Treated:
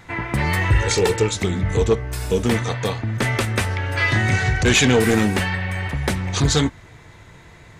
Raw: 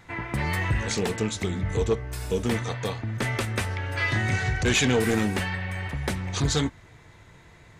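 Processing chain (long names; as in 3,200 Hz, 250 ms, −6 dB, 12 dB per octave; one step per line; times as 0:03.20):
0:00.71–0:01.34: comb filter 2.2 ms, depth 70%
level +6.5 dB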